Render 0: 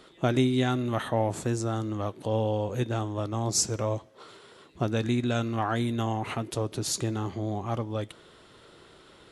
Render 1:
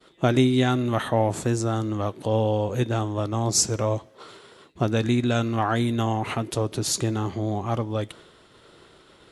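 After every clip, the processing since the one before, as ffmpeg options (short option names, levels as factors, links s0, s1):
-af "agate=range=0.0224:threshold=0.00355:ratio=3:detection=peak,volume=1.68"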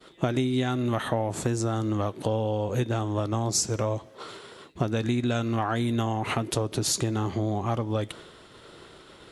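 -af "acompressor=threshold=0.0501:ratio=6,volume=1.5"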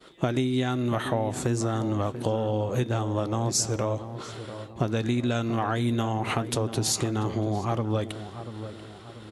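-filter_complex "[0:a]asplit=2[s0][s1];[s1]adelay=688,lowpass=f=1500:p=1,volume=0.282,asplit=2[s2][s3];[s3]adelay=688,lowpass=f=1500:p=1,volume=0.46,asplit=2[s4][s5];[s5]adelay=688,lowpass=f=1500:p=1,volume=0.46,asplit=2[s6][s7];[s7]adelay=688,lowpass=f=1500:p=1,volume=0.46,asplit=2[s8][s9];[s9]adelay=688,lowpass=f=1500:p=1,volume=0.46[s10];[s0][s2][s4][s6][s8][s10]amix=inputs=6:normalize=0"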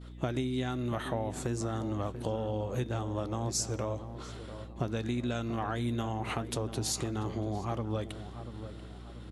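-af "aeval=exprs='val(0)+0.0126*(sin(2*PI*60*n/s)+sin(2*PI*2*60*n/s)/2+sin(2*PI*3*60*n/s)/3+sin(2*PI*4*60*n/s)/4+sin(2*PI*5*60*n/s)/5)':c=same,volume=0.447"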